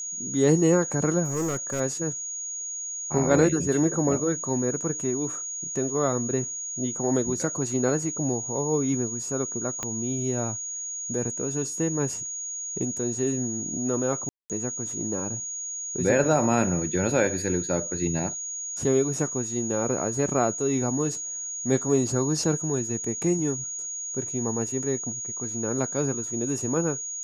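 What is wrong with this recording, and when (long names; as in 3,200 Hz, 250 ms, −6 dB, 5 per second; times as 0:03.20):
whistle 6,700 Hz −31 dBFS
0:01.24–0:01.81: clipping −23.5 dBFS
0:09.83: click −15 dBFS
0:14.29–0:14.50: drop-out 208 ms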